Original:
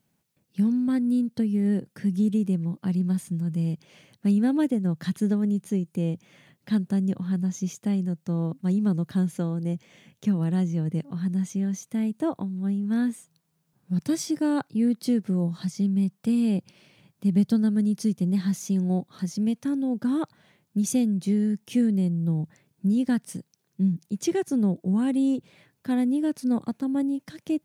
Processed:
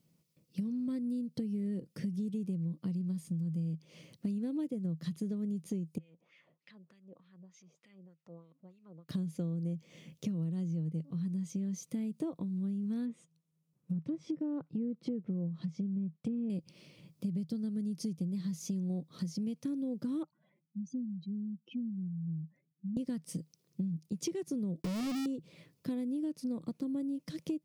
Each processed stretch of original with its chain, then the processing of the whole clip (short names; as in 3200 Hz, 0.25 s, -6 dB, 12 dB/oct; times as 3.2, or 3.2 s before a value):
5.98–9.09 compressor 3:1, threshold -40 dBFS + wah 3.3 Hz 600–2400 Hz, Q 2.4
13.05–16.5 gate -54 dBFS, range -11 dB + treble ducked by the level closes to 1200 Hz, closed at -21 dBFS + bell 4700 Hz -8.5 dB 0.34 oct
20.23–22.97 spectral contrast raised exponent 2.5 + speaker cabinet 440–3100 Hz, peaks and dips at 460 Hz -9 dB, 810 Hz +4 dB, 1200 Hz +3 dB, 1900 Hz -8 dB, 2900 Hz -9 dB
24.82–25.26 half-waves squared off + steep low-pass 2700 Hz 72 dB/oct + companded quantiser 2-bit
whole clip: thirty-one-band EQ 160 Hz +10 dB, 315 Hz +5 dB, 500 Hz +6 dB, 800 Hz -9 dB, 1600 Hz -10 dB, 5000 Hz +5 dB; compressor 10:1, threshold -30 dBFS; gain -3 dB